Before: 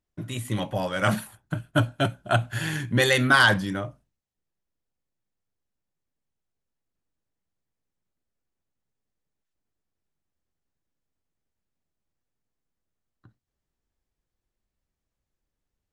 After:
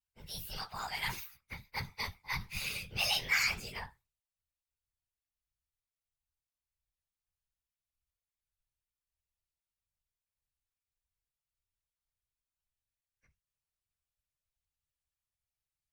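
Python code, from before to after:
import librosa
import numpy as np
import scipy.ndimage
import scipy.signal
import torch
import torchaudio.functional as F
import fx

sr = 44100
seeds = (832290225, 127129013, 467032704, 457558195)

p1 = fx.pitch_bins(x, sr, semitones=6.5)
p2 = fx.over_compress(p1, sr, threshold_db=-28.0, ratio=-1.0)
p3 = p1 + (p2 * librosa.db_to_amplitude(-2.0))
p4 = fx.whisperise(p3, sr, seeds[0])
p5 = fx.tone_stack(p4, sr, knobs='10-0-10')
y = p5 * librosa.db_to_amplitude(-6.0)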